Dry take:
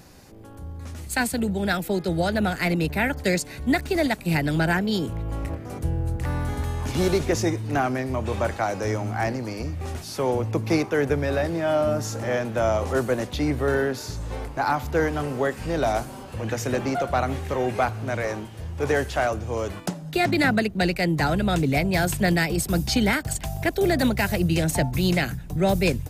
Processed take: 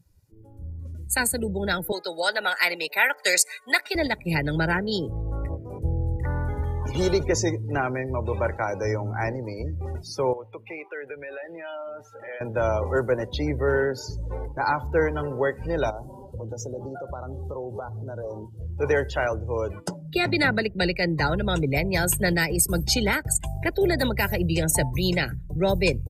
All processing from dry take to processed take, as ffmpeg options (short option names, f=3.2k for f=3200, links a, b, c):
-filter_complex "[0:a]asettb=1/sr,asplit=3[a][b][c];[a]atrim=end=1.924[d];[b]atrim=start=1.92:end=3.95,asetpts=PTS-STARTPTS,afade=t=in:d=0.004:c=qsin,afade=t=out:st=2.026:d=0.004:c=qsin,highpass=800,acontrast=35[e];[c]atrim=start=3.946[f];[d][e]acrossfade=d=0.004:c1=hsin:c2=qsin[g];[g][f]acrossfade=d=0.004:c1=qsin:c2=hsin,asettb=1/sr,asplit=3[h][i][j];[h]atrim=end=10.334[k];[i]atrim=start=10.33:end=12.41,asetpts=PTS-STARTPTS,afade=t=in:d=0.004:c=qsin,afade=t=out:st=2.076:d=0.004:c=qsin,highpass=f=1.1k:p=1,highshelf=f=4.1k:t=q:w=1.5:g=-10,acompressor=threshold=-33dB:ratio=2.5:attack=3.2:release=140:knee=1:detection=peak[l];[j]atrim=start=12.406[m];[k][l]acrossfade=d=0.004:c1=hsin:c2=qsin[n];[n][m]acrossfade=d=0.004:c1=qsin:c2=hsin,asettb=1/sr,asplit=3[o][p][q];[o]atrim=end=15.904[r];[p]atrim=start=15.9:end=18.61,asetpts=PTS-STARTPTS,afade=t=in:d=0.004:c=qsin,afade=t=out:st=2.706:d=0.004:c=qsin,asuperstop=centerf=2100:order=4:qfactor=1.7,equalizer=f=2k:t=o:w=0.43:g=-14.5,acompressor=threshold=-29dB:ratio=5:attack=3.2:release=140:knee=1:detection=peak[s];[q]atrim=start=18.606[t];[r][s]acrossfade=d=0.004:c1=hsin:c2=qsin[u];[u][t]acrossfade=d=0.004:c1=qsin:c2=hsin,afftdn=nr=27:nf=-35,equalizer=f=14k:w=0.33:g=12,aecho=1:1:2.1:0.42,volume=-1.5dB"